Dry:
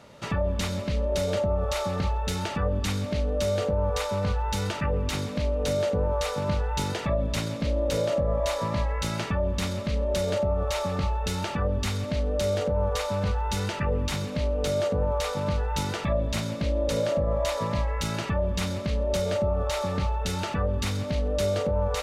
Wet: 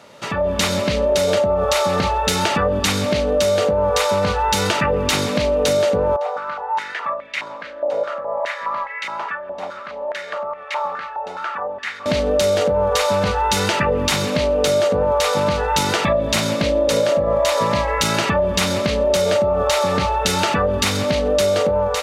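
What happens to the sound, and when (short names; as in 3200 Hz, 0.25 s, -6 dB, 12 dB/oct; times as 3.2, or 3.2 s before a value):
6.16–12.06 stepped band-pass 4.8 Hz 730–2100 Hz
whole clip: AGC gain up to 9 dB; HPF 350 Hz 6 dB/oct; compressor, threshold -21 dBFS; gain +7 dB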